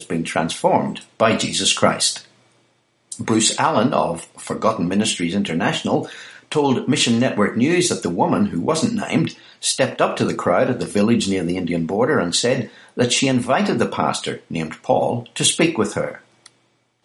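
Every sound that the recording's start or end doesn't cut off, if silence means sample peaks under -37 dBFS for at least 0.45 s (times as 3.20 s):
3.12–16.47 s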